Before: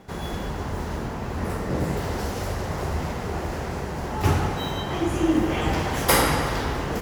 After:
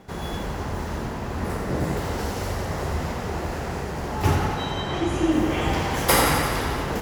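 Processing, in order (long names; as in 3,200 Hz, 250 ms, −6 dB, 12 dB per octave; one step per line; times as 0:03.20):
0:04.34–0:05.30: low-pass filter 5,900 Hz → 11,000 Hz 12 dB per octave
on a send: feedback echo with a high-pass in the loop 88 ms, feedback 66%, level −7.5 dB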